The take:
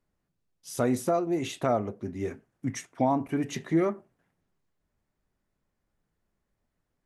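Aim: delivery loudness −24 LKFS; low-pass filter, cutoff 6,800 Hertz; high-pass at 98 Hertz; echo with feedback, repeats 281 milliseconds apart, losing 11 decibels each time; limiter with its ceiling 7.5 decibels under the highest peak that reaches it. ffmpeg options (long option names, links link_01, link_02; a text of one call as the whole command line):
ffmpeg -i in.wav -af "highpass=98,lowpass=6800,alimiter=limit=-20.5dB:level=0:latency=1,aecho=1:1:281|562|843:0.282|0.0789|0.0221,volume=8.5dB" out.wav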